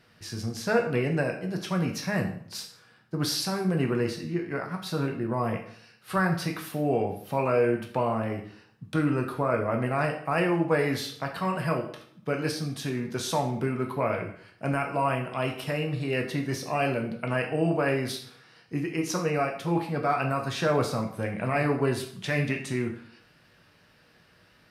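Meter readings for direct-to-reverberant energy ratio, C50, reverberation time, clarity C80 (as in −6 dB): 2.0 dB, 8.5 dB, 0.60 s, 12.0 dB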